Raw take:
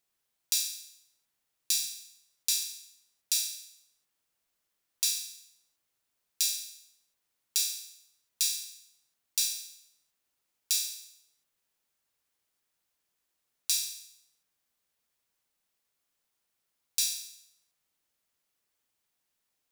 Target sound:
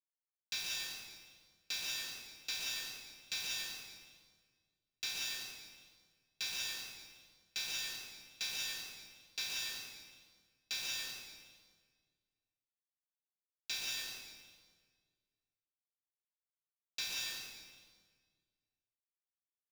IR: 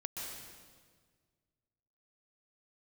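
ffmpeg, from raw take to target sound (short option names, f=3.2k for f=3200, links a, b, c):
-filter_complex "[0:a]lowpass=1.7k,aresample=16000,asoftclip=type=tanh:threshold=-39dB,aresample=44100,acrusher=bits=8:mix=0:aa=0.000001,afreqshift=-40[a];[1:a]atrim=start_sample=2205[b];[a][b]afir=irnorm=-1:irlink=0,volume=13.5dB"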